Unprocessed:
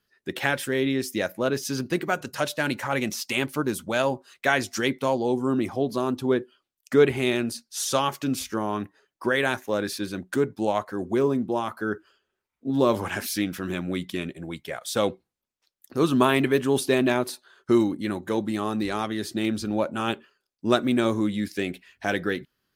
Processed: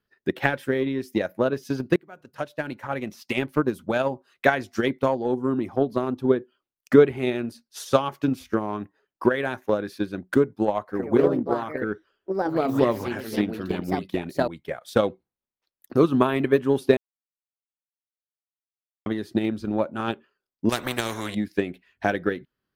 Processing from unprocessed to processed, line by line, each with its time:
1.96–3.56 s: fade in, from -21 dB
10.83–15.07 s: ever faster or slower copies 82 ms, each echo +3 st, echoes 2
16.97–19.06 s: mute
20.69–21.35 s: spectrum-flattening compressor 4:1
whole clip: treble shelf 2.1 kHz -8 dB; transient shaper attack +10 dB, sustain -2 dB; peaking EQ 7.7 kHz -6 dB 0.99 oct; trim -2 dB

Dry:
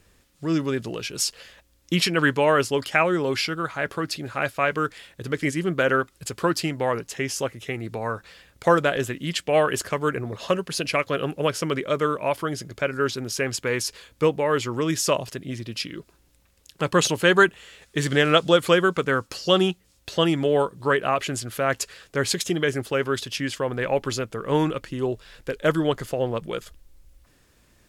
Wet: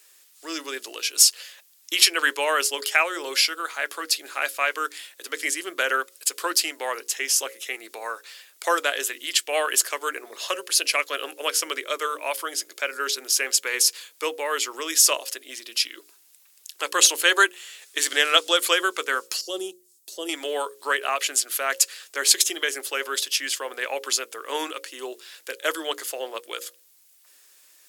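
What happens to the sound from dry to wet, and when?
19.41–20.29 s: FFT filter 370 Hz 0 dB, 1.6 kHz -22 dB, 2.4 kHz -20 dB, 8 kHz -5 dB
whole clip: steep high-pass 300 Hz 36 dB/octave; tilt EQ +4.5 dB/octave; hum notches 60/120/180/240/300/360/420/480/540 Hz; trim -2.5 dB

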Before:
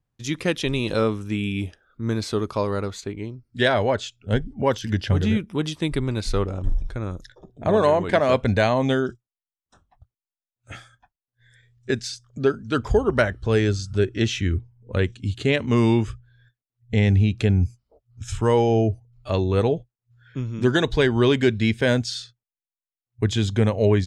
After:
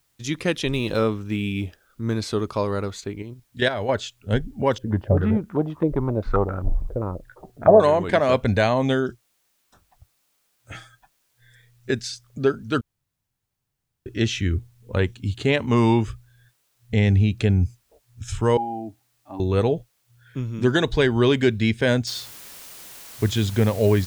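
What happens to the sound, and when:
0.71–2.16 s: median filter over 5 samples
3.22–3.89 s: level held to a coarse grid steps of 9 dB
4.78–7.80 s: step-sequenced low-pass 7.6 Hz 520–1500 Hz
10.74–11.90 s: comb 6.3 ms, depth 68%
12.81–14.06 s: room tone
14.93–16.00 s: peaking EQ 890 Hz +7 dB 0.55 oct
18.57–19.40 s: two resonant band-passes 480 Hz, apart 1.5 oct
22.07 s: noise floor step -69 dB -42 dB

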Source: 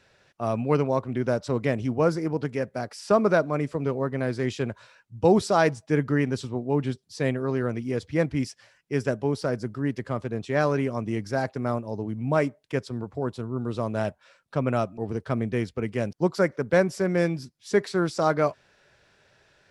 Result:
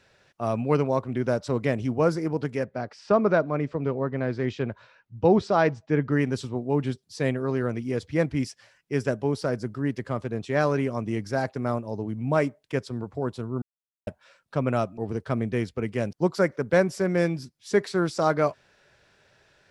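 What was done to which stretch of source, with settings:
2.64–6.12 s: distance through air 160 m
13.62–14.07 s: mute

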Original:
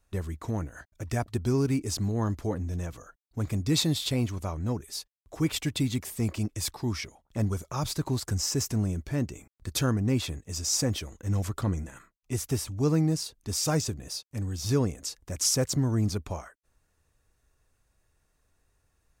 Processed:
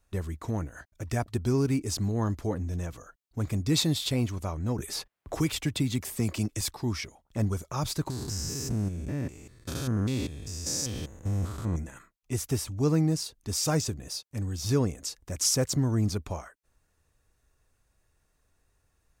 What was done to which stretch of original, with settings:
4.78–6.61 s: three bands compressed up and down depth 70%
8.10–11.76 s: spectrogram pixelated in time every 200 ms

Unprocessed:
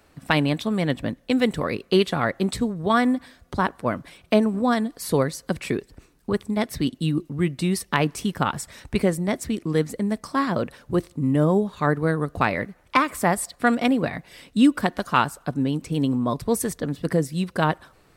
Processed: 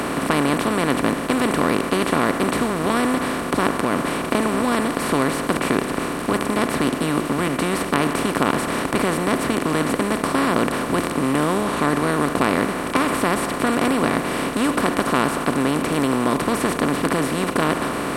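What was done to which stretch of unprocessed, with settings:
3.70–4.35 s: compression, threshold -27 dBFS
11.61–12.11 s: low-pass 12 kHz 24 dB/octave
whole clip: spectral levelling over time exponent 0.2; trim -8.5 dB

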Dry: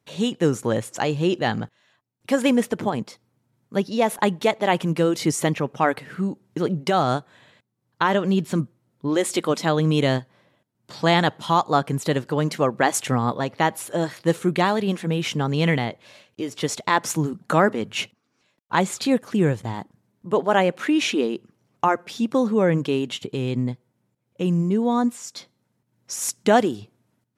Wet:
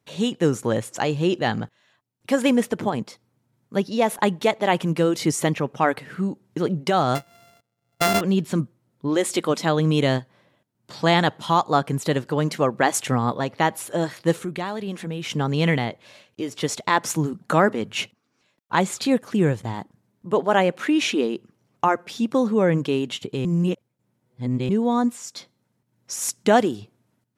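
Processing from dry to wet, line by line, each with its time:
7.15–8.21 s: sorted samples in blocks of 64 samples
14.37–15.30 s: compression 2:1, threshold -31 dBFS
23.45–24.69 s: reverse

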